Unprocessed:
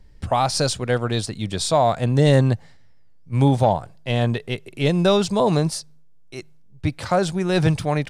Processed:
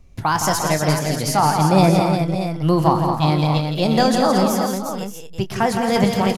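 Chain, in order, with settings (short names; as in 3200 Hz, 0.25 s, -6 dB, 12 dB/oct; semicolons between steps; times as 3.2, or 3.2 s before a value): varispeed +27%; doubler 26 ms -11.5 dB; tapped delay 0.121/0.166/0.225/0.352/0.572/0.631 s -14.5/-6.5/-8/-7/-14/-10.5 dB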